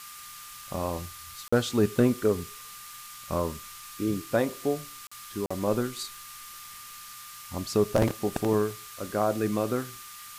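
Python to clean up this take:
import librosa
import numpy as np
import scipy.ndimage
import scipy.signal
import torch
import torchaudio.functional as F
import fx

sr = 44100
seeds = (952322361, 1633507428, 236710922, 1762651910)

y = fx.fix_declip(x, sr, threshold_db=-11.5)
y = fx.notch(y, sr, hz=1200.0, q=30.0)
y = fx.fix_interpolate(y, sr, at_s=(1.48, 5.07, 5.46), length_ms=45.0)
y = fx.noise_reduce(y, sr, print_start_s=6.66, print_end_s=7.16, reduce_db=28.0)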